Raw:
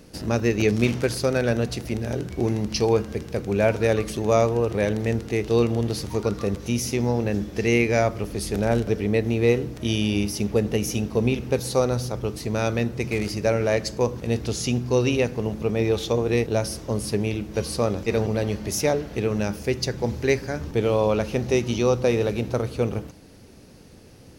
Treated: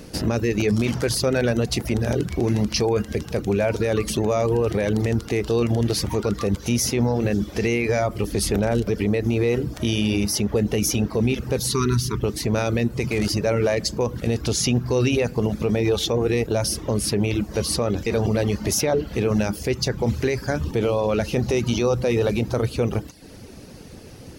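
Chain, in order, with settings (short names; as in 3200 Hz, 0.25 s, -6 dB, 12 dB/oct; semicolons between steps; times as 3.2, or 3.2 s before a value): reverb removal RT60 0.5 s; spectral delete 11.67–12.2, 450–920 Hz; limiter -20 dBFS, peak gain reduction 13.5 dB; gain +8 dB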